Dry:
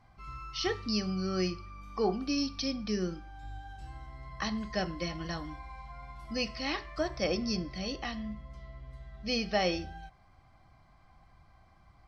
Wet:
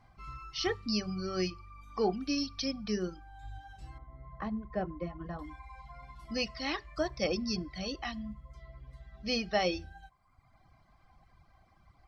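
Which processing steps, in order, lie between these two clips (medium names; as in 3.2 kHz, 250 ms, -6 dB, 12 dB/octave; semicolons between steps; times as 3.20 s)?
reverb removal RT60 1 s; 3.98–5.39 s: low-pass 1.1 kHz 12 dB/octave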